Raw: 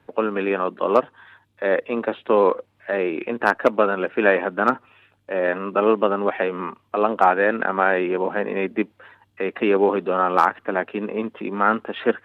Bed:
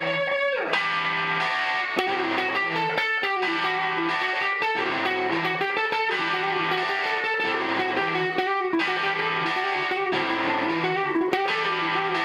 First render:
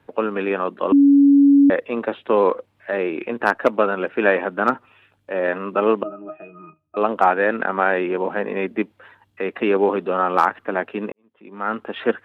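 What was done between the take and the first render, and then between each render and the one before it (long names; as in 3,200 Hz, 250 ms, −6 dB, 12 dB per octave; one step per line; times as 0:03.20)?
0:00.92–0:01.70: beep over 281 Hz −8.5 dBFS
0:06.03–0:06.97: resonances in every octave D#, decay 0.17 s
0:11.12–0:11.90: fade in quadratic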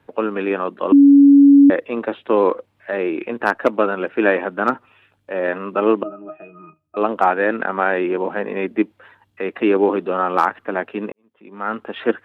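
dynamic equaliser 320 Hz, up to +7 dB, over −30 dBFS, Q 3.9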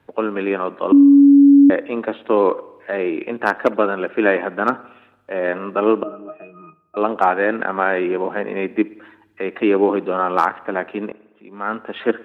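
spring reverb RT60 1 s, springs 56 ms, chirp 70 ms, DRR 19 dB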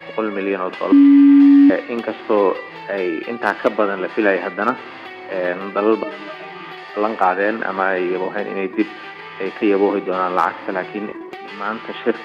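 mix in bed −9.5 dB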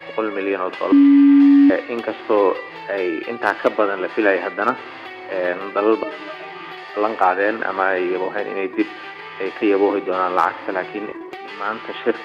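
parametric band 200 Hz −12 dB 0.37 octaves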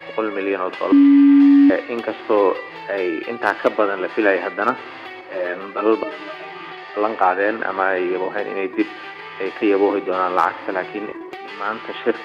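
0:05.21–0:05.86: string-ensemble chorus
0:06.70–0:08.31: high-frequency loss of the air 68 metres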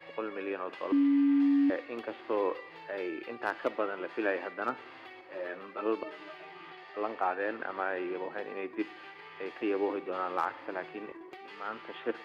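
level −14.5 dB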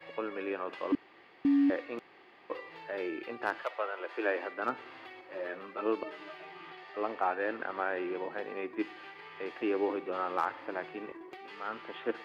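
0:00.95–0:01.45: fill with room tone
0:01.99–0:02.50: fill with room tone
0:03.62–0:04.61: high-pass filter 680 Hz → 210 Hz 24 dB per octave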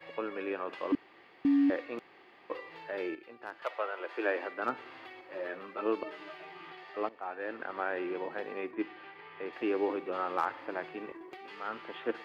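0:03.15–0:03.62: clip gain −10.5 dB
0:07.09–0:08.19: fade in equal-power, from −17.5 dB
0:08.71–0:09.53: high-frequency loss of the air 200 metres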